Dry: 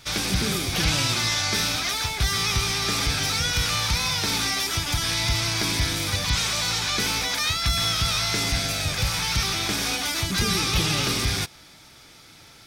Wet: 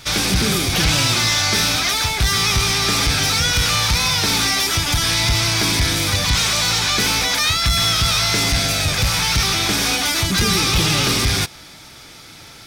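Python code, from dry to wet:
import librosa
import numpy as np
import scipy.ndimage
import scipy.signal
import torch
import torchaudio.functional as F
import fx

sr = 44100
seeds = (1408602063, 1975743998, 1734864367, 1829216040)

y = 10.0 ** (-19.0 / 20.0) * np.tanh(x / 10.0 ** (-19.0 / 20.0))
y = y * 10.0 ** (8.5 / 20.0)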